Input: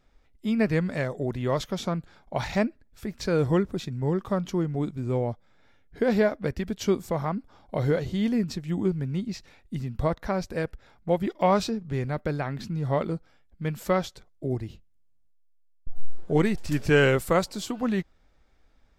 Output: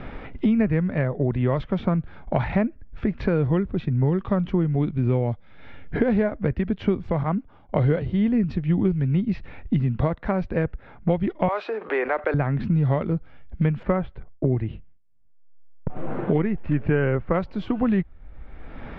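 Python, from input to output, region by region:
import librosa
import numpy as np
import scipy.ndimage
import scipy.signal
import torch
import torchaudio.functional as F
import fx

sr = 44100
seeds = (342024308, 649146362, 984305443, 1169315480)

y = fx.chain(x, sr, fx.peak_eq(hz=2900.0, db=4.5, octaves=0.22),
    fx.band_widen(depth_pct=100), at=(7.23, 8.02))
y = fx.chain(y, sr, fx.bessel_highpass(hz=680.0, order=8),
    fx.env_flatten(amount_pct=50), at=(11.48, 12.34))
y = fx.chain(y, sr, fx.gate_hold(open_db=-47.0, close_db=-57.0, hold_ms=71.0, range_db=-21, attack_ms=1.4, release_ms=100.0),
    fx.lowpass(hz=2100.0, slope=12), at=(13.83, 17.34))
y = scipy.signal.sosfilt(scipy.signal.butter(4, 2800.0, 'lowpass', fs=sr, output='sos'), y)
y = fx.low_shelf(y, sr, hz=190.0, db=9.0)
y = fx.band_squash(y, sr, depth_pct=100)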